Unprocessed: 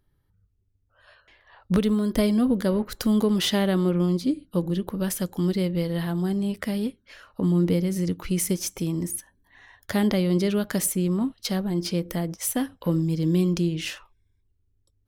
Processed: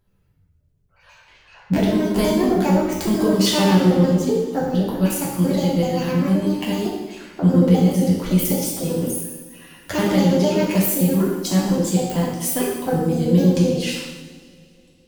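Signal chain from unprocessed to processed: trilling pitch shifter +7 st, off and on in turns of 64 ms; two-slope reverb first 0.97 s, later 3.1 s, from -19 dB, DRR -5.5 dB

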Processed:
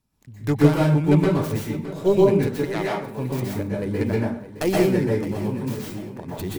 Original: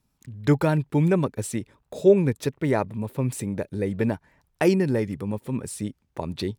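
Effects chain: tracing distortion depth 0.36 ms; 2.64–3.15 HPF 980 Hz -> 270 Hz; 5.75–6.28 compressor, threshold -31 dBFS, peak gain reduction 7.5 dB; feedback echo 0.616 s, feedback 44%, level -14.5 dB; plate-style reverb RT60 0.53 s, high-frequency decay 0.65×, pre-delay 0.11 s, DRR -4.5 dB; gain -3.5 dB

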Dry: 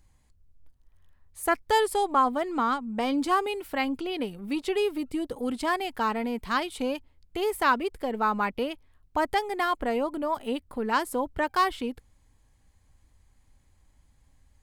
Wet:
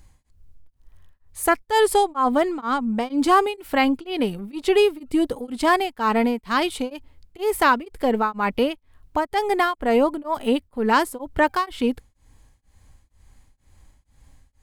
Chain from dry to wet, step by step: harmonic-percussive split percussive -3 dB; in parallel at 0 dB: limiter -21 dBFS, peak gain reduction 9 dB; on the sum: beating tremolo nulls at 2.1 Hz; gain +5 dB

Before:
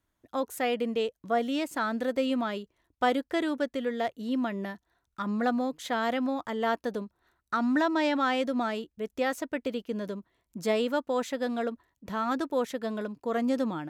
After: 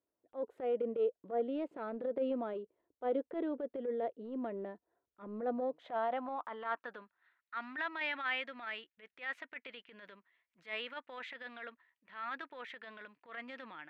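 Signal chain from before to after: band-pass sweep 470 Hz -> 2000 Hz, 5.46–7.31; transient shaper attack -11 dB, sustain +2 dB; resonant high shelf 4600 Hz -9.5 dB, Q 1.5

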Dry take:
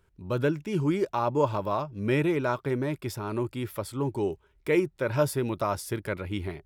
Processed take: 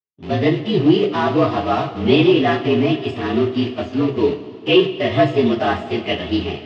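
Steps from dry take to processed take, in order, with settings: inharmonic rescaling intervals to 114%; low shelf 400 Hz +7.5 dB; sample leveller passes 1; expander -43 dBFS; in parallel at -5 dB: sample gate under -28 dBFS; on the sum: speaker cabinet 240–4500 Hz, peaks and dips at 520 Hz -6 dB, 1000 Hz -4 dB, 1500 Hz -9 dB, 2800 Hz +9 dB; on a send at -3 dB: reverb, pre-delay 3 ms; on the sum: gain +4.5 dB

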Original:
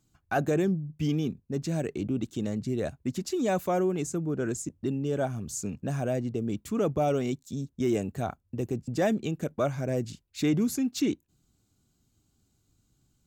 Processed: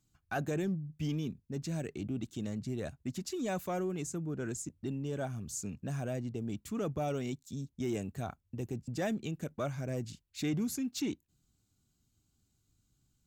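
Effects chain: bell 500 Hz -5 dB 2.3 oct; in parallel at -12 dB: overloaded stage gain 29 dB; on the sum: gain -6 dB

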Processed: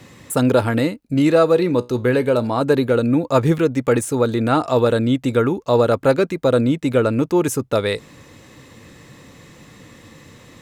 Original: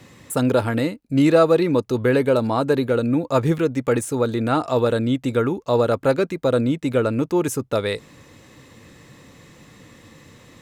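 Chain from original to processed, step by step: 1.14–2.61 resonator 61 Hz, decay 0.25 s, harmonics all, mix 40%; gain +3 dB

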